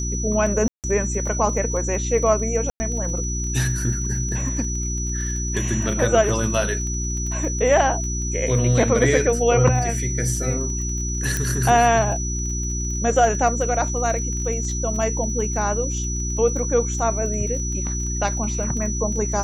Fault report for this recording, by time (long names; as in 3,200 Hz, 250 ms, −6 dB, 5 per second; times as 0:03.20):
surface crackle 26 per second −30 dBFS
mains hum 60 Hz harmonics 6 −26 dBFS
whistle 5,900 Hz −28 dBFS
0:00.68–0:00.84: drop-out 158 ms
0:02.70–0:02.80: drop-out 100 ms
0:11.37: click